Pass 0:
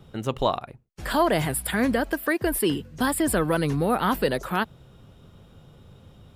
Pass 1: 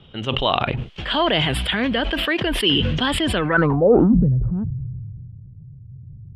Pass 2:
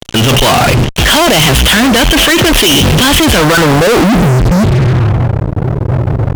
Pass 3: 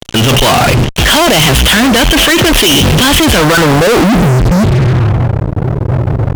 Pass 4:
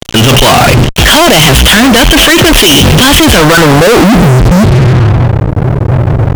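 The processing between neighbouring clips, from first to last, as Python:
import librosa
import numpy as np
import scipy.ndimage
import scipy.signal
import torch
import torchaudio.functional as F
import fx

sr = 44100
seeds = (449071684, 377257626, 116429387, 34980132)

y1 = fx.filter_sweep_lowpass(x, sr, from_hz=3100.0, to_hz=120.0, start_s=3.37, end_s=4.29, q=6.0)
y1 = fx.sustainer(y1, sr, db_per_s=21.0)
y2 = fx.leveller(y1, sr, passes=2)
y2 = fx.transient(y2, sr, attack_db=1, sustain_db=-5)
y2 = fx.fuzz(y2, sr, gain_db=38.0, gate_db=-46.0)
y2 = F.gain(torch.from_numpy(y2), 6.5).numpy()
y3 = y2
y4 = fx.leveller(y3, sr, passes=2)
y4 = F.gain(torch.from_numpy(y4), 1.5).numpy()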